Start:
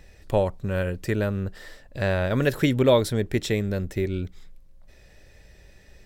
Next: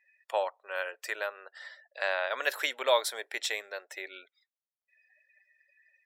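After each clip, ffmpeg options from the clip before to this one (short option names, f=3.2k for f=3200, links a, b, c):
-af "highpass=f=700:w=0.5412,highpass=f=700:w=1.3066,afftdn=nr=34:nf=-52"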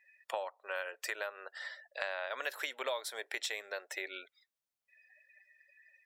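-af "acompressor=threshold=-37dB:ratio=6,volume=2.5dB"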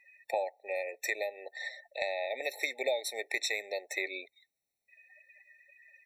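-af "afftfilt=real='re*eq(mod(floor(b*sr/1024/890),2),0)':imag='im*eq(mod(floor(b*sr/1024/890),2),0)':win_size=1024:overlap=0.75,volume=6.5dB"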